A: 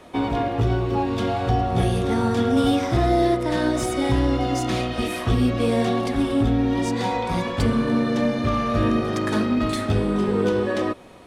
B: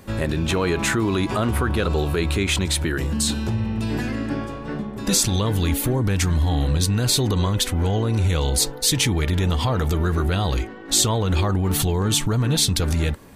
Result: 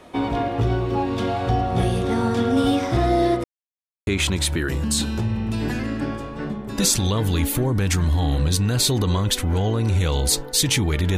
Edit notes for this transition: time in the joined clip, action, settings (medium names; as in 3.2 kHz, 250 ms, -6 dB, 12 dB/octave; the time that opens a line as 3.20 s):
A
3.44–4.07 s: mute
4.07 s: go over to B from 2.36 s